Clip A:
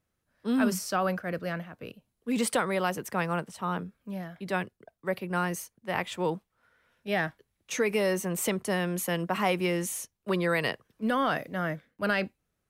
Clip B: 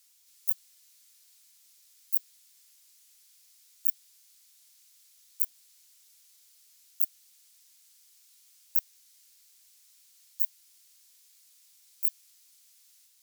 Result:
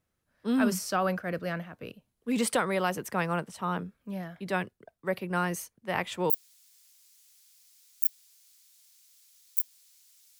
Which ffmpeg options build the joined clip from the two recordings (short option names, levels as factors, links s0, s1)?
-filter_complex "[0:a]apad=whole_dur=10.39,atrim=end=10.39,atrim=end=6.302[s0];[1:a]atrim=start=2.128:end=6.22[s1];[s0][s1]acrossfade=d=0.004:c1=hsin:c2=hsin"